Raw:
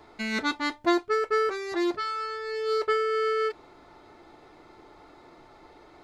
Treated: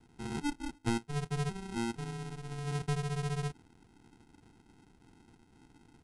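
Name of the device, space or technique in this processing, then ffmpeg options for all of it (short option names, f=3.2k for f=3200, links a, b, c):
crushed at another speed: -af "asetrate=88200,aresample=44100,acrusher=samples=38:mix=1:aa=0.000001,asetrate=22050,aresample=44100,volume=-8.5dB"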